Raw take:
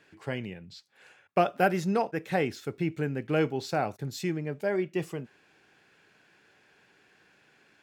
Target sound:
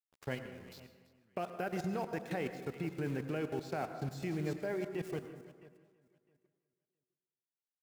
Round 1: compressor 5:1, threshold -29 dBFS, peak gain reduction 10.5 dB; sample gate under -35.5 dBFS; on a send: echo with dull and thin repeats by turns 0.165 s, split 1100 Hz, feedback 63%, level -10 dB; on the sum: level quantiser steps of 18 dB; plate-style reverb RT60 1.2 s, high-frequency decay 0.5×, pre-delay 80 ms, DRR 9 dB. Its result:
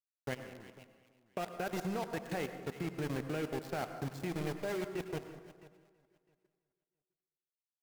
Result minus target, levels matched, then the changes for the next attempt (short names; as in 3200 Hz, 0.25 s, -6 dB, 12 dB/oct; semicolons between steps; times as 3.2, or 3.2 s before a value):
sample gate: distortion +11 dB
change: sample gate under -45.5 dBFS